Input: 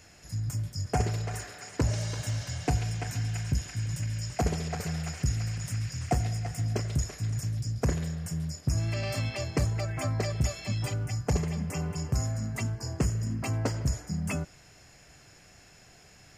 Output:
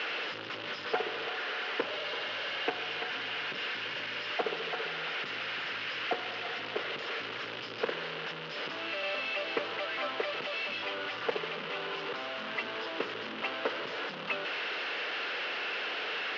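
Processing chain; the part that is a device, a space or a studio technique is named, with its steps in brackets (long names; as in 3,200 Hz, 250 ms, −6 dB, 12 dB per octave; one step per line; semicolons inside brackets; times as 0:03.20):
digital answering machine (band-pass filter 390–3,300 Hz; linear delta modulator 32 kbit/s, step −32 dBFS; loudspeaker in its box 350–4,000 Hz, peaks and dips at 470 Hz +5 dB, 700 Hz −6 dB, 1,400 Hz +4 dB, 2,900 Hz +8 dB)
level +1.5 dB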